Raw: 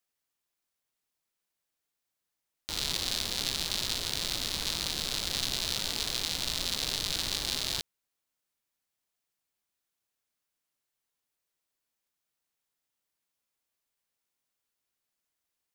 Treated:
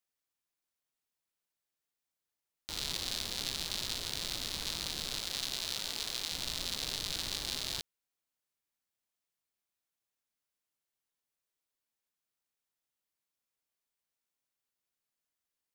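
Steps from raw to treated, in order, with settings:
0:05.20–0:06.32: low-shelf EQ 250 Hz −7 dB
level −5 dB

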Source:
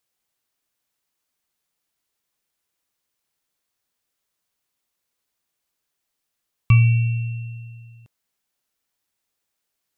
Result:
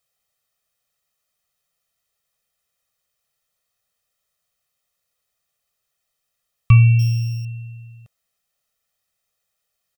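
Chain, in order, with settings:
0:06.99–0:07.45: samples sorted by size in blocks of 8 samples
comb filter 1.6 ms, depth 82%

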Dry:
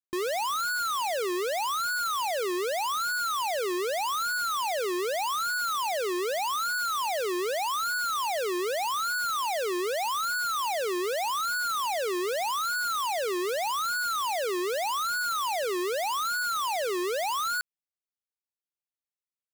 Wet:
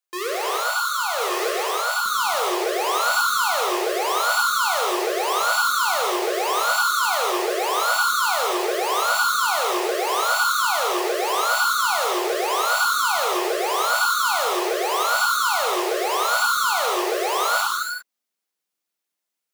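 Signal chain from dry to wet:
high-pass filter 460 Hz 24 dB per octave, from 0:02.06 170 Hz
brickwall limiter −28.5 dBFS, peak gain reduction 8 dB
reverb whose tail is shaped and stops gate 420 ms flat, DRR −3.5 dB
level +7 dB

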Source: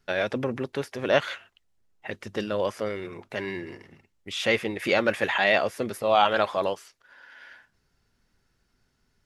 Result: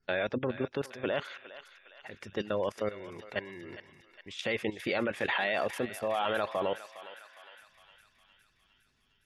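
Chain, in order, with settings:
output level in coarse steps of 15 dB
gate on every frequency bin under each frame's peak −30 dB strong
feedback echo with a high-pass in the loop 409 ms, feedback 67%, high-pass 1,100 Hz, level −11.5 dB

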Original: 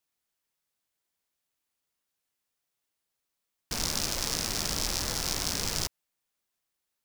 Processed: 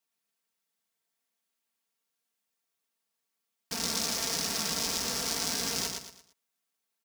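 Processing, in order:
high-pass filter 120 Hz 12 dB per octave
comb filter 4.4 ms
on a send: repeating echo 114 ms, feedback 34%, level −4.5 dB
on the sum: level −3 dB

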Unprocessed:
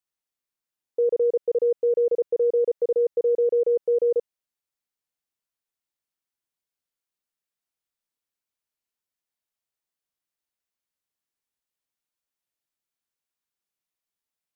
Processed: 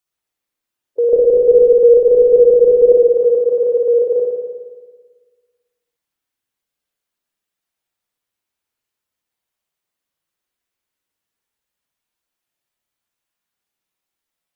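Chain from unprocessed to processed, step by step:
spectral magnitudes quantised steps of 15 dB
0:01.13–0:02.92: spectral tilt −4.5 dB per octave
spring reverb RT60 1.5 s, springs 55 ms, chirp 25 ms, DRR −0.5 dB
level +6.5 dB

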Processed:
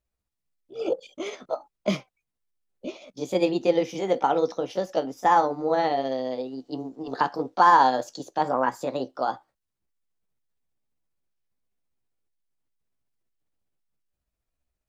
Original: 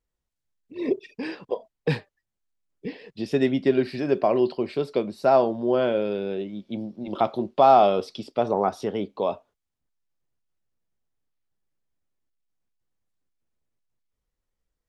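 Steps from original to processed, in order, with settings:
pitch shift by two crossfaded delay taps +4.5 semitones

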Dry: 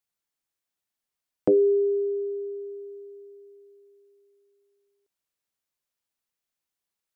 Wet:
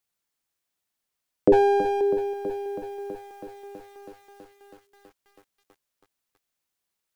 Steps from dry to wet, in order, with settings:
0:01.52–0:02.01: lower of the sound and its delayed copy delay 8.2 ms
feedback echo at a low word length 325 ms, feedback 80%, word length 9 bits, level −12.5 dB
level +4 dB

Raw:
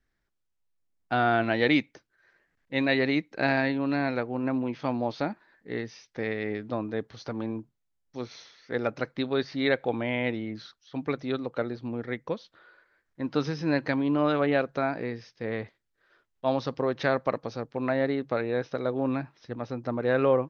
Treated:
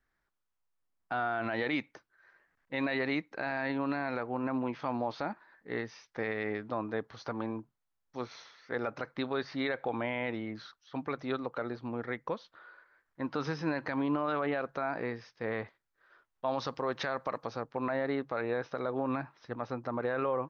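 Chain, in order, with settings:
parametric band 1,100 Hz +10 dB 1.7 octaves
brickwall limiter −16 dBFS, peak gain reduction 11.5 dB
0:16.53–0:17.47: high-shelf EQ 3,700 Hz +8.5 dB
level −5.5 dB

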